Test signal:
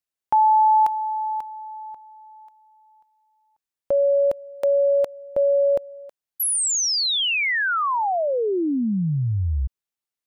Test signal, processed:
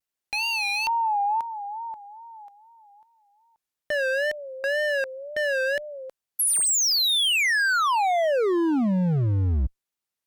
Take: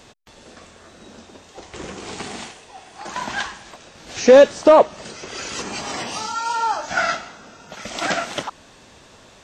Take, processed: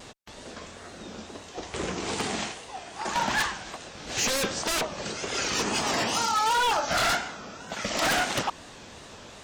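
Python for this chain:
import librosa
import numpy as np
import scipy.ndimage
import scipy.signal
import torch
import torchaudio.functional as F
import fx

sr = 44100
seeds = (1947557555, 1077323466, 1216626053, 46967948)

y = fx.cheby_harmonics(x, sr, harmonics=(3, 4, 5), levels_db=(-35, -37, -9), full_scale_db=-2.0)
y = 10.0 ** (-12.5 / 20.0) * (np.abs((y / 10.0 ** (-12.5 / 20.0) + 3.0) % 4.0 - 2.0) - 1.0)
y = fx.wow_flutter(y, sr, seeds[0], rate_hz=2.1, depth_cents=120.0)
y = F.gain(torch.from_numpy(y), -6.5).numpy()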